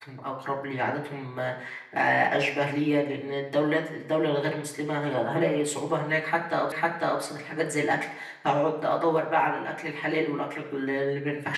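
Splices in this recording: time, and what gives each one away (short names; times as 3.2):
6.72 repeat of the last 0.5 s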